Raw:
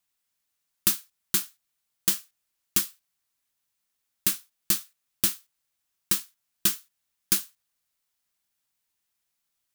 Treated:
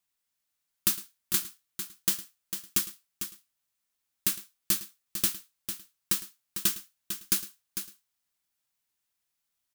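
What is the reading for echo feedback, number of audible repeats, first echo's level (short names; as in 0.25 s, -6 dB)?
no steady repeat, 3, -17.5 dB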